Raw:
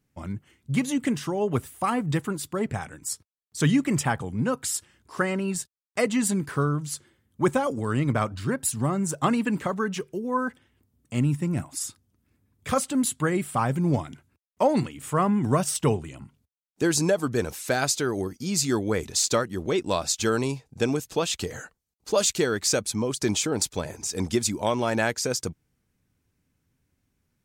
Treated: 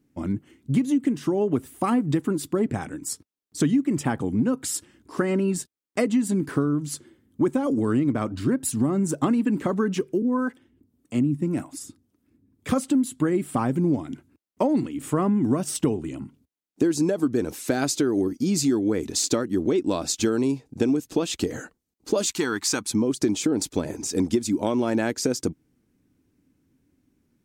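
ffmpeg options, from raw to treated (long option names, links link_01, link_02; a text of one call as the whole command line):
ffmpeg -i in.wav -filter_complex "[0:a]asettb=1/sr,asplit=3[link_01][link_02][link_03];[link_01]atrim=end=10.224[link_04];[link_02]atrim=start=10.22:end=12.69,asetpts=PTS-STARTPTS,afade=type=in:duration=0.004:curve=qsin,afade=type=out:start_time=2.466:duration=0.004:curve=qsin,acrossover=split=410[link_05][link_06];[link_05]aeval=exprs='val(0)*(1-0.7/2+0.7/2*cos(2*PI*1.8*n/s))':channel_layout=same[link_07];[link_06]aeval=exprs='val(0)*(1-0.7/2-0.7/2*cos(2*PI*1.8*n/s))':channel_layout=same[link_08];[link_07][link_08]amix=inputs=2:normalize=0[link_09];[link_03]atrim=start=12.686[link_10];[link_04][link_09]acrossfade=duration=0.004:curve1=hsin:curve2=qsin[link_11];[link_11][link_10]acrossfade=duration=0.004:curve1=qsin:curve2=hsin,asettb=1/sr,asplit=3[link_12][link_13][link_14];[link_12]atrim=end=22.274[link_15];[link_13]atrim=start=22.27:end=22.9,asetpts=PTS-STARTPTS,afade=type=in:duration=0.004:curve=qsin,afade=type=out:start_time=0.626:duration=0.004:curve=qsin,lowshelf=frequency=730:width_type=q:width=3:gain=-7.5[link_16];[link_14]atrim=start=22.896[link_17];[link_15][link_16]acrossfade=duration=0.004:curve1=hsin:curve2=qsin[link_18];[link_18][link_17]acrossfade=duration=0.004:curve1=qsin:curve2=hsin,equalizer=frequency=290:width=1.3:gain=15,acompressor=threshold=-19dB:ratio=6" out.wav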